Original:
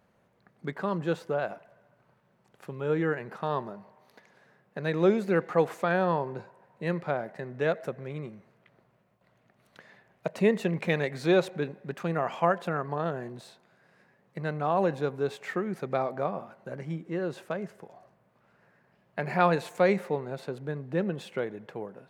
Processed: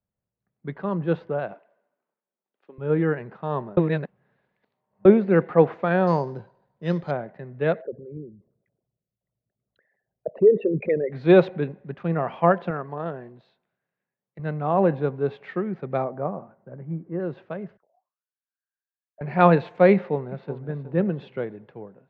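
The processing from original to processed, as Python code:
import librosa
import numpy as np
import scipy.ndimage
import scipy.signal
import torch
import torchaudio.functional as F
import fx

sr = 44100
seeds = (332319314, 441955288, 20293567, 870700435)

y = fx.highpass(x, sr, hz=260.0, slope=24, at=(1.53, 2.78))
y = fx.resample_bad(y, sr, factor=8, down='none', up='hold', at=(6.07, 7.11))
y = fx.envelope_sharpen(y, sr, power=3.0, at=(7.81, 11.11), fade=0.02)
y = fx.low_shelf(y, sr, hz=200.0, db=-7.5, at=(12.7, 14.39))
y = fx.lowpass(y, sr, hz=1500.0, slope=12, at=(16.04, 17.2))
y = fx.auto_wah(y, sr, base_hz=620.0, top_hz=1900.0, q=12.0, full_db=-45.0, direction='down', at=(17.77, 19.21))
y = fx.echo_throw(y, sr, start_s=19.94, length_s=0.69, ms=370, feedback_pct=40, wet_db=-10.0)
y = fx.edit(y, sr, fx.reverse_span(start_s=3.77, length_s=1.28), tone=tone)
y = scipy.signal.sosfilt(scipy.signal.butter(4, 3700.0, 'lowpass', fs=sr, output='sos'), y)
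y = fx.tilt_eq(y, sr, slope=-2.0)
y = fx.band_widen(y, sr, depth_pct=70)
y = y * 10.0 ** (1.5 / 20.0)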